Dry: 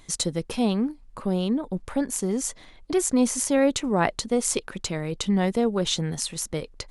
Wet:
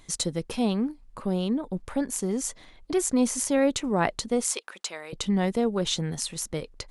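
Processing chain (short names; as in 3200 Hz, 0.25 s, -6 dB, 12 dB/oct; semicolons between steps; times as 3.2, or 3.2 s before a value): 4.44–5.13 HPF 690 Hz 12 dB/oct; gain -2 dB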